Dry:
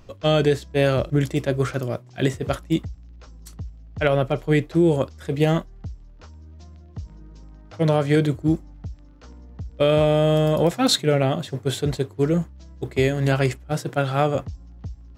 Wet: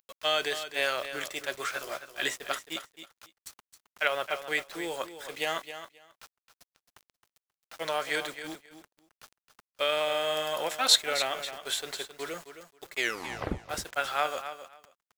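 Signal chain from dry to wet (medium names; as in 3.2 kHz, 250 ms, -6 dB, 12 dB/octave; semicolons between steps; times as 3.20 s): high-pass 1.1 kHz 12 dB/octave; added noise pink -69 dBFS; bit crusher 8-bit; 1.71–2.36 s: doubling 14 ms -2 dB; 12.99 s: tape stop 0.60 s; feedback delay 267 ms, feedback 17%, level -11 dB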